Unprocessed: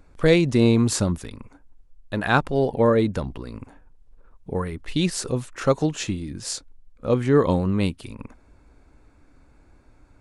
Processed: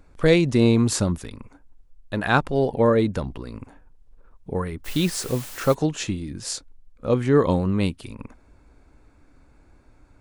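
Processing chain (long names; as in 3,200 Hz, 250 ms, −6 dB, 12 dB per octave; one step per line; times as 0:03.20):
0:04.84–0:05.73: background noise white −40 dBFS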